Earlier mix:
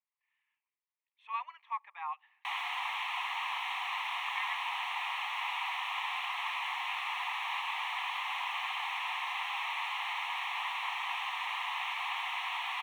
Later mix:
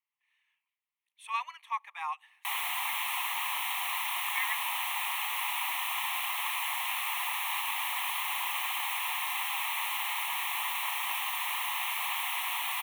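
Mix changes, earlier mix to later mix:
speech: remove head-to-tape spacing loss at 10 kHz 22 dB
master: remove high-frequency loss of the air 150 metres

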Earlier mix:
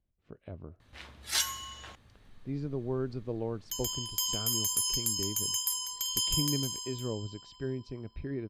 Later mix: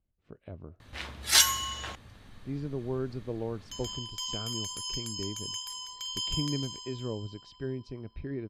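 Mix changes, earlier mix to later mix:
first sound +8.5 dB
second sound: add low-pass filter 4,700 Hz 12 dB per octave

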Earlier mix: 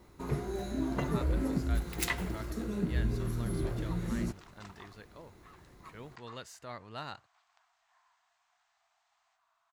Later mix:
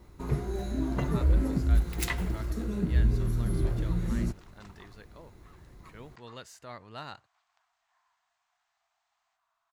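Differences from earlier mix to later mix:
first sound: add low-shelf EQ 110 Hz +10.5 dB
second sound −3.5 dB

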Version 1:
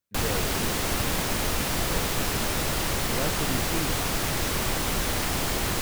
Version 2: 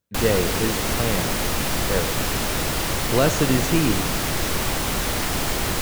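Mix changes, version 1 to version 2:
speech +10.0 dB
reverb: on, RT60 1.8 s

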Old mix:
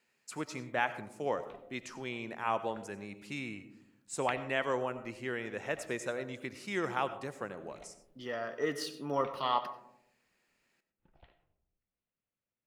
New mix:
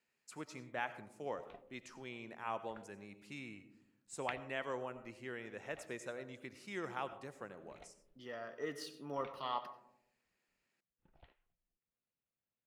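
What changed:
speech −8.5 dB
background: send off

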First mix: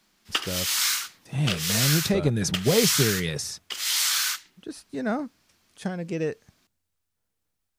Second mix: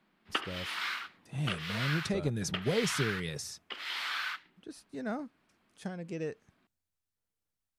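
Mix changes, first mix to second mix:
speech −9.0 dB
background: add high-frequency loss of the air 450 metres

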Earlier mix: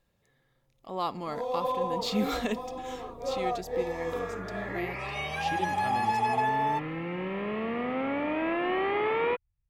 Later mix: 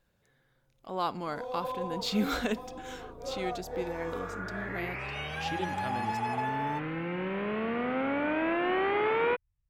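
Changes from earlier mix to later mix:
first sound −6.0 dB
master: remove Butterworth band-reject 1,500 Hz, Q 7.3

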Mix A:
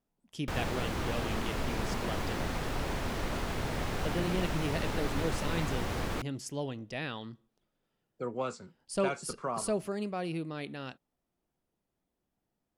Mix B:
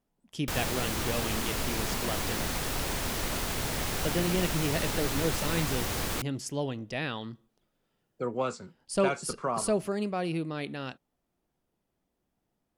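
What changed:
speech +4.0 dB
background: remove low-pass filter 1,800 Hz 6 dB per octave

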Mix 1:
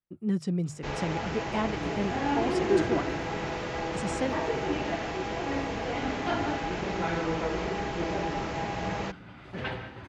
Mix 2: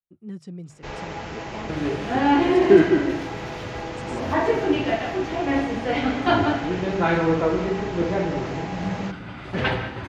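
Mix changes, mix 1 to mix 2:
speech −8.0 dB
second sound +11.0 dB

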